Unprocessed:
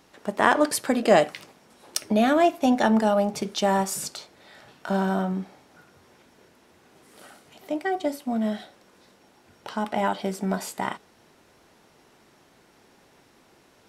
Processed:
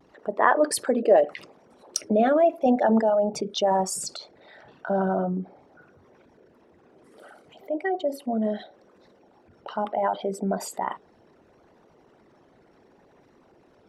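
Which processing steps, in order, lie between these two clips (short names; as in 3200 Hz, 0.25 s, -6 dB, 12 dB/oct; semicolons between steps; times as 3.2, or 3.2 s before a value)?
formant sharpening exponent 2; vibrato 0.7 Hz 38 cents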